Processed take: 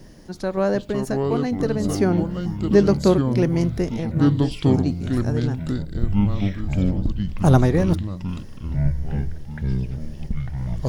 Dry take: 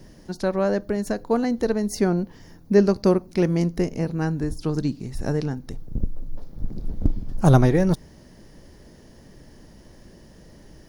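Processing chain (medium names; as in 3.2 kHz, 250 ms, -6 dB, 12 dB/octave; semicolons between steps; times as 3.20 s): random-step tremolo; ever faster or slower copies 328 ms, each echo -6 st, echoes 3; trim +2 dB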